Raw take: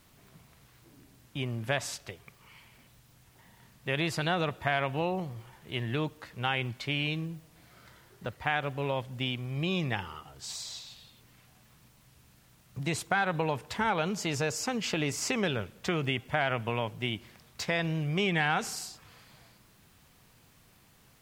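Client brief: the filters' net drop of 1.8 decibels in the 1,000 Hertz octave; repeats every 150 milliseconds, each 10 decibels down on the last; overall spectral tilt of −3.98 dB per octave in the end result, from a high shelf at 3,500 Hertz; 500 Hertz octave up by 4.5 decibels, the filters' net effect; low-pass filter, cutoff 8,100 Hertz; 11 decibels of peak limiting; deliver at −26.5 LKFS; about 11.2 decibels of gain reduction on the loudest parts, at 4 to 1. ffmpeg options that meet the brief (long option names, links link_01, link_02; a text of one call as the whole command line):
ffmpeg -i in.wav -af "lowpass=8100,equalizer=frequency=500:width_type=o:gain=7,equalizer=frequency=1000:width_type=o:gain=-6.5,highshelf=frequency=3500:gain=4.5,acompressor=threshold=-37dB:ratio=4,alimiter=level_in=7.5dB:limit=-24dB:level=0:latency=1,volume=-7.5dB,aecho=1:1:150|300|450|600:0.316|0.101|0.0324|0.0104,volume=16dB" out.wav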